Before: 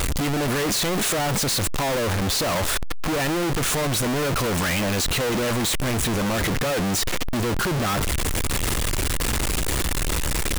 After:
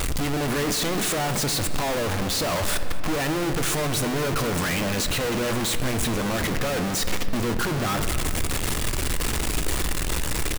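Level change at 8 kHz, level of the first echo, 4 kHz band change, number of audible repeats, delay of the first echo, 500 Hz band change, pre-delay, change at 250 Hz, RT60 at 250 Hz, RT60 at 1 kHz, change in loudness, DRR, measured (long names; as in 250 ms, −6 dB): −2.5 dB, −20.0 dB, −2.0 dB, 1, 227 ms, −1.5 dB, 3 ms, −1.5 dB, 4.0 s, 2.5 s, −2.0 dB, 8.0 dB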